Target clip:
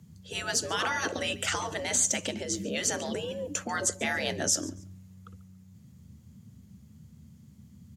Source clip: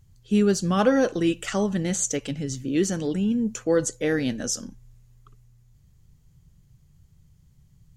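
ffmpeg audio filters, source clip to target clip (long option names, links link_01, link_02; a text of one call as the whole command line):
ffmpeg -i in.wav -af "afftfilt=real='re*lt(hypot(re,im),0.2)':imag='im*lt(hypot(re,im),0.2)':win_size=1024:overlap=0.75,afreqshift=67,aecho=1:1:141|282:0.1|0.023,volume=3.5dB" out.wav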